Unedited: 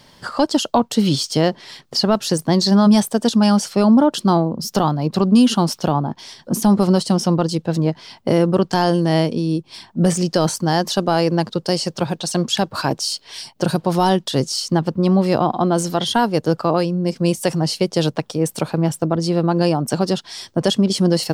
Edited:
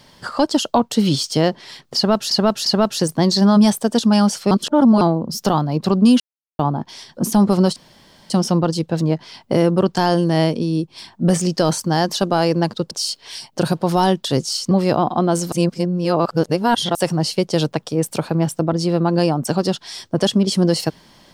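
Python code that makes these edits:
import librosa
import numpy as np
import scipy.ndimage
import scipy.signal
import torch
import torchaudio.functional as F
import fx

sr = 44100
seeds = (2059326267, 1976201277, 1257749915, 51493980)

y = fx.edit(x, sr, fx.repeat(start_s=1.96, length_s=0.35, count=3),
    fx.reverse_span(start_s=3.81, length_s=0.5),
    fx.silence(start_s=5.5, length_s=0.39),
    fx.insert_room_tone(at_s=7.06, length_s=0.54),
    fx.cut(start_s=11.67, length_s=1.27),
    fx.cut(start_s=14.74, length_s=0.4),
    fx.reverse_span(start_s=15.95, length_s=1.43), tone=tone)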